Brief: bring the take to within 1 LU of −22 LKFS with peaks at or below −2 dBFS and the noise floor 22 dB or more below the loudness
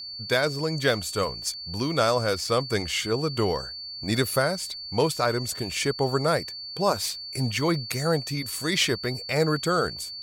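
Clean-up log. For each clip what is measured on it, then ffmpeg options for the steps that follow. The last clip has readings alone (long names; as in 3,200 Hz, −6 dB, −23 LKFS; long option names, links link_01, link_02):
interfering tone 4,500 Hz; level of the tone −35 dBFS; integrated loudness −26.0 LKFS; sample peak −9.0 dBFS; target loudness −22.0 LKFS
→ -af "bandreject=frequency=4500:width=30"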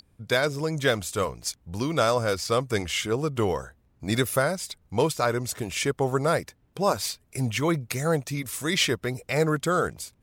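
interfering tone none found; integrated loudness −26.5 LKFS; sample peak −9.0 dBFS; target loudness −22.0 LKFS
→ -af "volume=4.5dB"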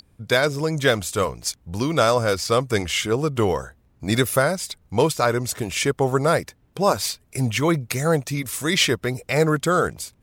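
integrated loudness −22.0 LKFS; sample peak −4.5 dBFS; background noise floor −60 dBFS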